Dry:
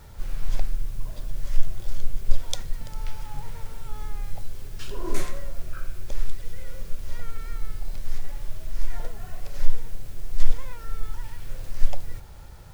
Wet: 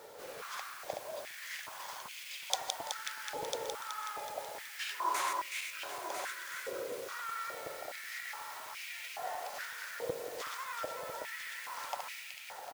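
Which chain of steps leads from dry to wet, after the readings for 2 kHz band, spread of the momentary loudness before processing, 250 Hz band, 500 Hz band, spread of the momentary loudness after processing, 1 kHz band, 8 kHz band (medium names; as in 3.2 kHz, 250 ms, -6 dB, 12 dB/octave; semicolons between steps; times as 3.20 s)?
+7.0 dB, 8 LU, -11.0 dB, +2.5 dB, 8 LU, +7.5 dB, no reading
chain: backward echo that repeats 187 ms, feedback 69%, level -4 dB; on a send: delay 998 ms -7.5 dB; on the sum: step-sequenced high-pass 2.4 Hz 480–2400 Hz; trim -1.5 dB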